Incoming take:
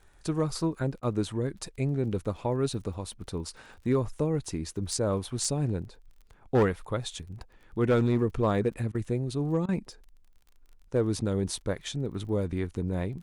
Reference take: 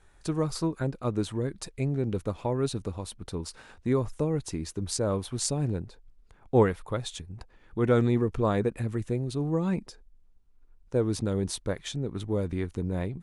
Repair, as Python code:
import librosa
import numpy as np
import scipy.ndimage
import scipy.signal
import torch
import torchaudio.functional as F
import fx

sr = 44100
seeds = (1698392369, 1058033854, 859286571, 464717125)

y = fx.fix_declip(x, sr, threshold_db=-17.5)
y = fx.fix_declick_ar(y, sr, threshold=6.5)
y = fx.fix_interpolate(y, sr, at_s=(1.0, 8.92, 9.66), length_ms=25.0)